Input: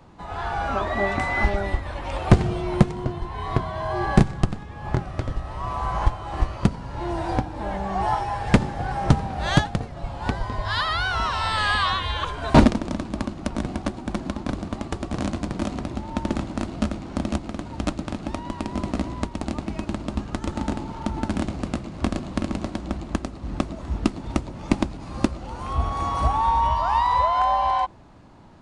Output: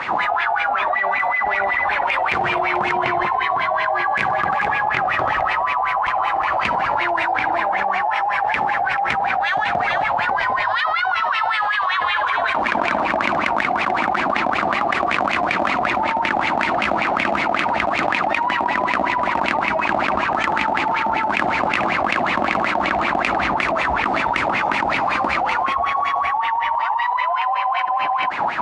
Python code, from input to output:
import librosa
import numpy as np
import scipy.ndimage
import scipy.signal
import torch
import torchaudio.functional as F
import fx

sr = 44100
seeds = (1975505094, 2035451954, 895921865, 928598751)

y = 10.0 ** (-15.0 / 20.0) * np.tanh(x / 10.0 ** (-15.0 / 20.0))
y = fx.wah_lfo(y, sr, hz=5.3, low_hz=720.0, high_hz=2400.0, q=6.7)
y = y + 10.0 ** (-14.5 / 20.0) * np.pad(y, (int(438 * sr / 1000.0), 0))[:len(y)]
y = fx.env_flatten(y, sr, amount_pct=100)
y = y * librosa.db_to_amplitude(5.0)